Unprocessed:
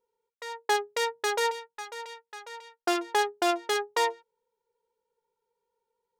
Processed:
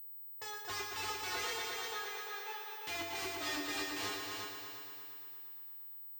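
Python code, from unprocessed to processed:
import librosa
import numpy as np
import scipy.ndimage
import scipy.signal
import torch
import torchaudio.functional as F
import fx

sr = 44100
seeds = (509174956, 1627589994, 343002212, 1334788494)

p1 = fx.pitch_ramps(x, sr, semitones=-2.5, every_ms=720)
p2 = fx.dynamic_eq(p1, sr, hz=1200.0, q=3.6, threshold_db=-46.0, ratio=4.0, max_db=-4)
p3 = fx.rider(p2, sr, range_db=4, speed_s=2.0)
p4 = p2 + (p3 * 10.0 ** (-2.5 / 20.0))
p5 = (np.mod(10.0 ** (25.0 / 20.0) * p4 + 1.0, 2.0) - 1.0) / 10.0 ** (25.0 / 20.0)
p6 = scipy.signal.sosfilt(scipy.signal.butter(2, 46.0, 'highpass', fs=sr, output='sos'), p5)
p7 = fx.comb_fb(p6, sr, f0_hz=97.0, decay_s=0.33, harmonics='odd', damping=0.0, mix_pct=90)
p8 = fx.echo_heads(p7, sr, ms=116, heads='all three', feedback_pct=56, wet_db=-7.0)
p9 = fx.pwm(p8, sr, carrier_hz=16000.0)
y = p9 * 10.0 ** (3.0 / 20.0)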